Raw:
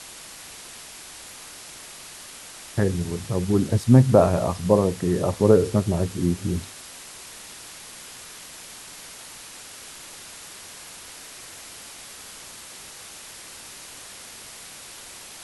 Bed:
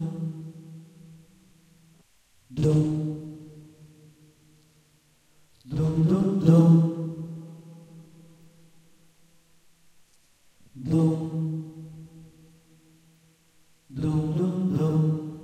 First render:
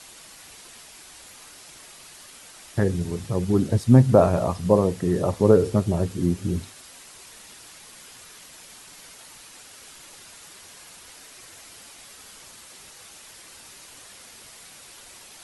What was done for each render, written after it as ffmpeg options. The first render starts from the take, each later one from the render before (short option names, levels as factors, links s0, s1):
-af "afftdn=nr=6:nf=-42"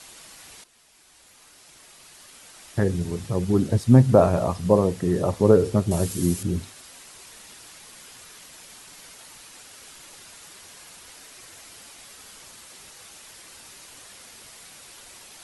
-filter_complex "[0:a]asettb=1/sr,asplit=3[s0][s1][s2];[s0]atrim=end=5.914[s3];[s1]atrim=start=5.91:end=6.43,asetpts=PTS-STARTPTS,afade=t=in:d=0.004:c=qsin,afade=t=out:st=0.516:d=0.004:c=qsin,aemphasis=mode=production:type=75kf[s4];[s2]atrim=start=6.426[s5];[s3][s4]acrossfade=d=0.004:c1=hsin:c2=qsin[s6];[s6][s5]acrossfade=d=0.004:c1=qsin:c2=hsin,asplit=2[s7][s8];[s7]atrim=end=0.64,asetpts=PTS-STARTPTS,afade=t=out:st=0.636:d=0.004:c=hsin:silence=0.177828[s9];[s8]atrim=start=0.64,asetpts=PTS-STARTPTS,afade=t=in:d=2.3:silence=0.177828[s10];[s9][s10]concat=n=2:v=0:a=1"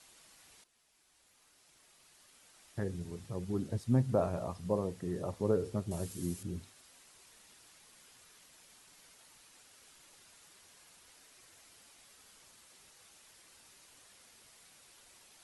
-af "volume=0.188"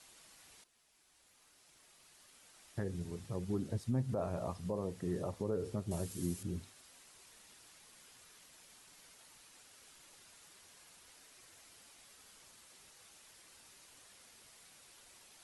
-af "alimiter=level_in=1.26:limit=0.0631:level=0:latency=1:release=154,volume=0.794"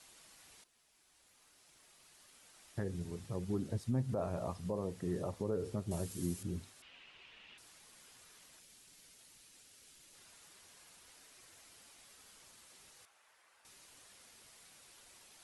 -filter_complex "[0:a]asettb=1/sr,asplit=3[s0][s1][s2];[s0]atrim=end=6.824[s3];[s1]atrim=start=6.82:end=7.58,asetpts=PTS-STARTPTS,afade=t=in:d=0.004:c=qsin,afade=t=out:st=0.756:d=0.004:c=qsin,lowpass=f=2800:t=q:w=4.2[s4];[s2]atrim=start=7.576[s5];[s3][s4]acrossfade=d=0.004:c1=hsin:c2=qsin[s6];[s6][s5]acrossfade=d=0.004:c1=qsin:c2=hsin,asettb=1/sr,asplit=3[s7][s8][s9];[s7]atrim=end=8.594[s10];[s8]atrim=start=8.59:end=10.15,asetpts=PTS-STARTPTS,afade=t=in:d=0.004:c=qsin,afade=t=out:st=1.556:d=0.004:c=qsin,equalizer=f=1000:t=o:w=1.9:g=-8[s11];[s9]atrim=start=10.146[s12];[s10][s11]acrossfade=d=0.004:c1=hsin:c2=qsin[s13];[s13][s12]acrossfade=d=0.004:c1=qsin:c2=hsin,asettb=1/sr,asplit=3[s14][s15][s16];[s14]atrim=end=13.054[s17];[s15]atrim=start=13.05:end=13.65,asetpts=PTS-STARTPTS,afade=t=in:d=0.004:c=qsin,afade=t=out:st=0.596:d=0.004:c=qsin,acrossover=split=560 2200:gain=0.112 1 0.224[s18][s19][s20];[s18][s19][s20]amix=inputs=3:normalize=0[s21];[s16]atrim=start=13.646[s22];[s17][s21]acrossfade=d=0.004:c1=hsin:c2=qsin[s23];[s23][s22]acrossfade=d=0.004:c1=qsin:c2=hsin"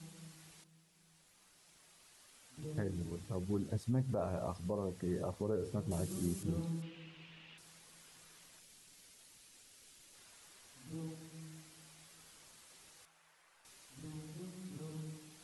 -filter_complex "[1:a]volume=0.0668[s0];[0:a][s0]amix=inputs=2:normalize=0"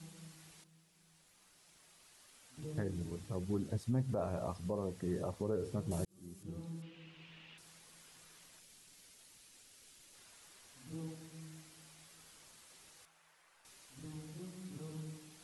-filter_complex "[0:a]asplit=2[s0][s1];[s0]atrim=end=6.05,asetpts=PTS-STARTPTS,afade=t=out:st=6.046:d=0.004:c=hsin[s2];[s1]atrim=start=6.05,asetpts=PTS-STARTPTS,afade=t=in:d=1.31[s3];[s2][s3]concat=n=2:v=0:a=1"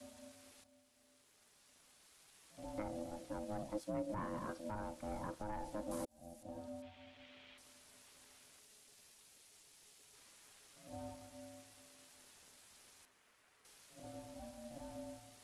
-filter_complex "[0:a]acrossover=split=120|760|3300[s0][s1][s2][s3];[s1]asoftclip=type=tanh:threshold=0.0112[s4];[s0][s4][s2][s3]amix=inputs=4:normalize=0,aeval=exprs='val(0)*sin(2*PI*420*n/s)':c=same"